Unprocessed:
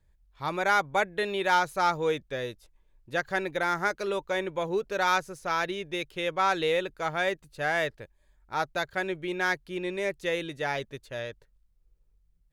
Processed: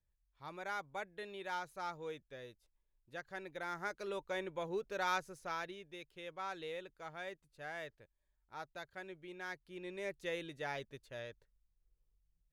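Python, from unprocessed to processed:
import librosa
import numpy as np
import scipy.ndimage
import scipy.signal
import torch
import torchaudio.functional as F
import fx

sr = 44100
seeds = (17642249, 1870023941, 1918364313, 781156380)

y = fx.gain(x, sr, db=fx.line((3.32, -17.5), (4.24, -10.5), (5.4, -10.5), (5.88, -18.0), (9.46, -18.0), (10.15, -11.0)))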